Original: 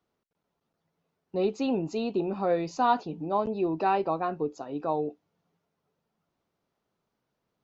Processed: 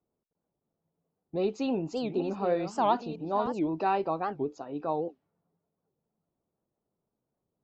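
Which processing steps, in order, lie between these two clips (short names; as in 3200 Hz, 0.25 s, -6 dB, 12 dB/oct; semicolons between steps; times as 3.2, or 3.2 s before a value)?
1.35–3.6 reverse delay 0.603 s, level -10.5 dB; low-pass opened by the level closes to 710 Hz, open at -26.5 dBFS; record warp 78 rpm, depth 250 cents; gain -2 dB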